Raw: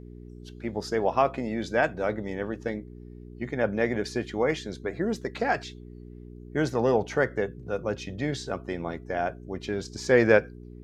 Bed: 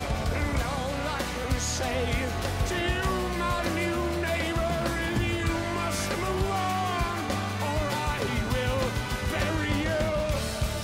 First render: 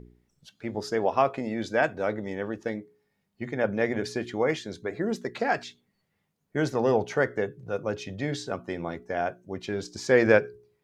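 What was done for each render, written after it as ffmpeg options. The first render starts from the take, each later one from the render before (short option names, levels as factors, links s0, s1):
-af "bandreject=f=60:t=h:w=4,bandreject=f=120:t=h:w=4,bandreject=f=180:t=h:w=4,bandreject=f=240:t=h:w=4,bandreject=f=300:t=h:w=4,bandreject=f=360:t=h:w=4,bandreject=f=420:t=h:w=4"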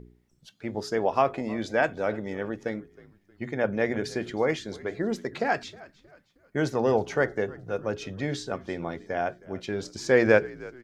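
-filter_complex "[0:a]asplit=4[s0][s1][s2][s3];[s1]adelay=314,afreqshift=-63,volume=0.0891[s4];[s2]adelay=628,afreqshift=-126,volume=0.0355[s5];[s3]adelay=942,afreqshift=-189,volume=0.0143[s6];[s0][s4][s5][s6]amix=inputs=4:normalize=0"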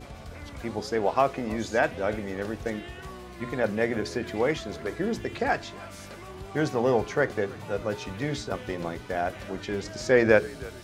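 -filter_complex "[1:a]volume=0.2[s0];[0:a][s0]amix=inputs=2:normalize=0"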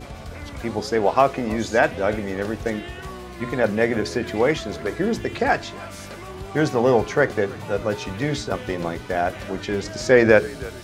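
-af "volume=2,alimiter=limit=0.794:level=0:latency=1"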